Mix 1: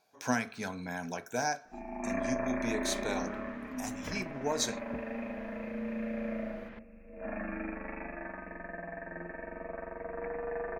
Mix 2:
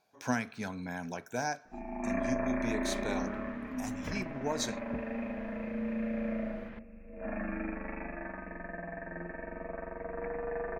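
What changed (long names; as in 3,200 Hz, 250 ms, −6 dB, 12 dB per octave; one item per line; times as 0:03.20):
speech: send −6.0 dB
master: add bass and treble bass +4 dB, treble −3 dB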